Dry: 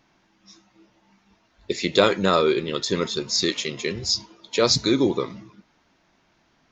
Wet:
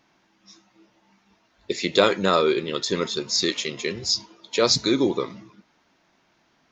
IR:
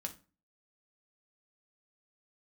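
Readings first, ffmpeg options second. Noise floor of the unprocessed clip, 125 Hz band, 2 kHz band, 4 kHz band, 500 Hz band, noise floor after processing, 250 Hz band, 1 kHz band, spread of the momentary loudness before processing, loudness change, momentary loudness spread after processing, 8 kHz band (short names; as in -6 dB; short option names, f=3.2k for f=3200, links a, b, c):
-65 dBFS, -3.0 dB, 0.0 dB, 0.0 dB, -0.5 dB, -65 dBFS, -1.0 dB, 0.0 dB, 9 LU, -0.5 dB, 9 LU, 0.0 dB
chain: -af "lowshelf=f=97:g=-10.5"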